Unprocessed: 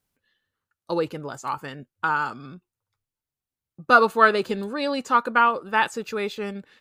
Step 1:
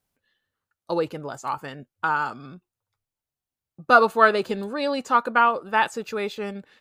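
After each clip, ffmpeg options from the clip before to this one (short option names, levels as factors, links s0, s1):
-af "equalizer=f=690:w=2.2:g=4.5,volume=0.891"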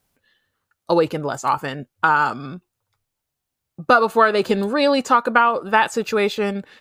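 -af "acompressor=threshold=0.1:ratio=6,volume=2.82"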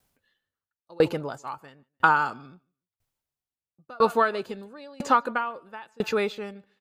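-filter_complex "[0:a]acrossover=split=5300[s0][s1];[s0]aecho=1:1:148|296:0.075|0.0232[s2];[s1]alimiter=level_in=3.16:limit=0.0631:level=0:latency=1:release=99,volume=0.316[s3];[s2][s3]amix=inputs=2:normalize=0,aeval=exprs='val(0)*pow(10,-32*if(lt(mod(1*n/s,1),2*abs(1)/1000),1-mod(1*n/s,1)/(2*abs(1)/1000),(mod(1*n/s,1)-2*abs(1)/1000)/(1-2*abs(1)/1000))/20)':c=same"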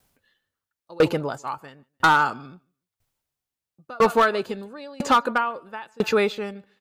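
-af "asoftclip=type=hard:threshold=0.15,volume=1.78"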